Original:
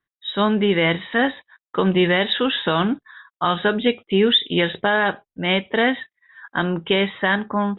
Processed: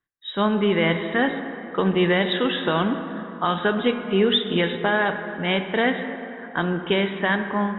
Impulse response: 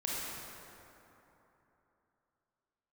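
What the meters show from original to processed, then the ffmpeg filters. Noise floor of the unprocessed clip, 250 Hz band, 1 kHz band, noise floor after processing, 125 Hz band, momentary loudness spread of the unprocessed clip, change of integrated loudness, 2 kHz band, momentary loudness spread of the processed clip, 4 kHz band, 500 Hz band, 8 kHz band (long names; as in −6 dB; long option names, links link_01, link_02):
below −85 dBFS, −1.5 dB, −2.0 dB, −38 dBFS, −1.5 dB, 8 LU, −2.5 dB, −2.5 dB, 9 LU, −4.5 dB, −1.5 dB, can't be measured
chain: -filter_complex "[0:a]asplit=2[link_01][link_02];[1:a]atrim=start_sample=2205,lowpass=2900[link_03];[link_02][link_03]afir=irnorm=-1:irlink=0,volume=-9dB[link_04];[link_01][link_04]amix=inputs=2:normalize=0,volume=-4.5dB"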